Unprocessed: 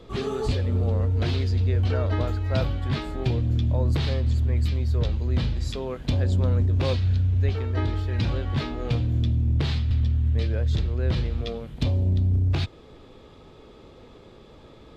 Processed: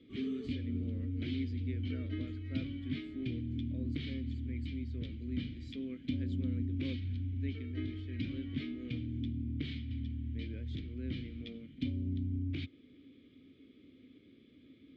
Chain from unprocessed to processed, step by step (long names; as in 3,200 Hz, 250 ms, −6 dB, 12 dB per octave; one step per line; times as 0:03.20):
formant filter i
parametric band 86 Hz +10.5 dB 1.2 octaves